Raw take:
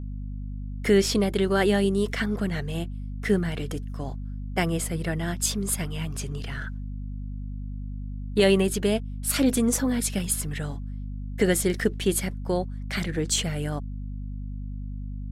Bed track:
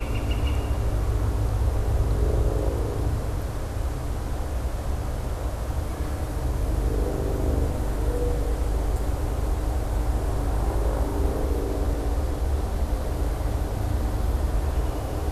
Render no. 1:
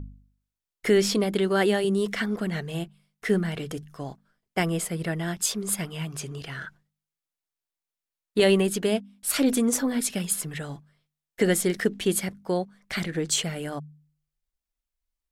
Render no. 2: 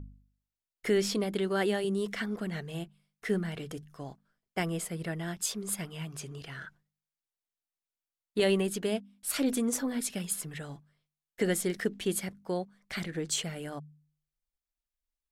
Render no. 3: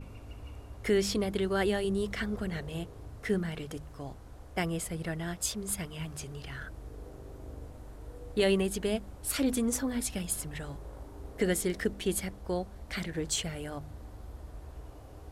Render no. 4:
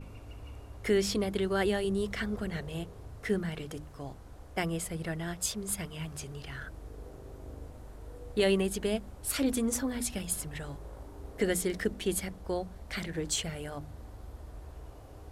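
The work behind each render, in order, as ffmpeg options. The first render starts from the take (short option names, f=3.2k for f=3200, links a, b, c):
-af "bandreject=f=50:t=h:w=4,bandreject=f=100:t=h:w=4,bandreject=f=150:t=h:w=4,bandreject=f=200:t=h:w=4,bandreject=f=250:t=h:w=4"
-af "volume=-6.5dB"
-filter_complex "[1:a]volume=-20.5dB[a];[0:a][a]amix=inputs=2:normalize=0"
-af "bandreject=f=60:t=h:w=6,bandreject=f=120:t=h:w=6,bandreject=f=180:t=h:w=6,bandreject=f=240:t=h:w=6,bandreject=f=300:t=h:w=6"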